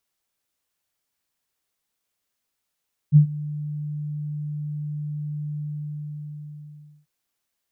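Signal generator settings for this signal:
note with an ADSR envelope sine 149 Hz, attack 42 ms, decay 99 ms, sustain −20 dB, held 2.46 s, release 1,480 ms −7 dBFS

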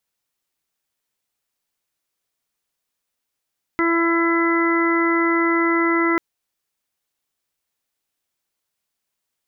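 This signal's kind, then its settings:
steady harmonic partials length 2.39 s, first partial 335 Hz, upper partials −14.5/−8/−5/−15.5/−4 dB, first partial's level −18 dB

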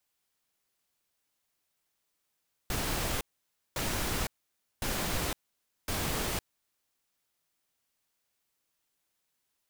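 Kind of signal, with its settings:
noise bursts pink, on 0.51 s, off 0.55 s, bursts 4, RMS −32 dBFS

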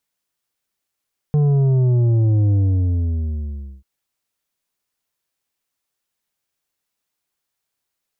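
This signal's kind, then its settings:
bass drop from 150 Hz, over 2.49 s, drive 7.5 dB, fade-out 1.31 s, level −13.5 dB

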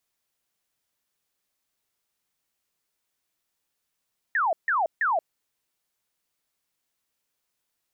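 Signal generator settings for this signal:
repeated falling chirps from 1,900 Hz, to 610 Hz, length 0.18 s sine, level −20.5 dB, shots 3, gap 0.15 s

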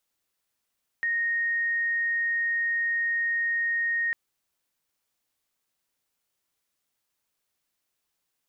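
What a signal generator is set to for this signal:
tone sine 1,860 Hz −23.5 dBFS 3.10 s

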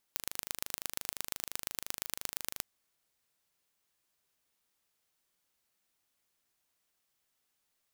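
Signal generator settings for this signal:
impulse train 25.8 per second, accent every 3, −6 dBFS 2.47 s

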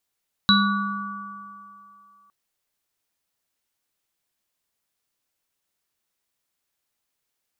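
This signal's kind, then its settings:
inharmonic partials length 1.81 s, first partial 201 Hz, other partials 1,150/1,460/3,920 Hz, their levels −3.5/−4.5/3.5 dB, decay 1.87 s, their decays 3.07/1.95/0.48 s, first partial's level −16.5 dB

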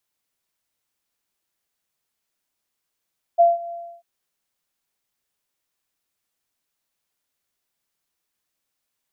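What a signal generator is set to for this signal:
note with an ADSR envelope sine 685 Hz, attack 24 ms, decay 174 ms, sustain −20 dB, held 0.34 s, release 303 ms −9 dBFS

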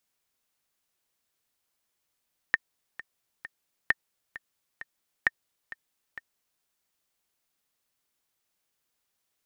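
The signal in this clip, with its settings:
click track 132 BPM, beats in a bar 3, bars 3, 1,820 Hz, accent 17.5 dB −8 dBFS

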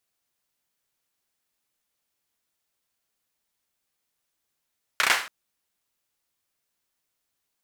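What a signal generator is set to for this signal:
synth clap length 0.28 s, bursts 4, apart 33 ms, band 1,600 Hz, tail 0.41 s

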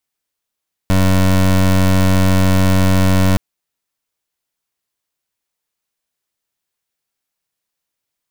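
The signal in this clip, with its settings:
pulse wave 93.9 Hz, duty 23% −11.5 dBFS 2.47 s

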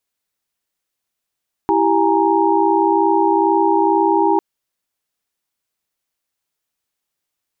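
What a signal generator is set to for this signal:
held notes E4/G4/G#5/A#5 sine, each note −17.5 dBFS 2.70 s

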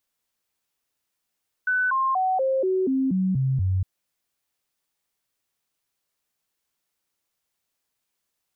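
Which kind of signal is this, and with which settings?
stepped sweep 1,500 Hz down, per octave 2, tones 9, 0.24 s, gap 0.00 s −19.5 dBFS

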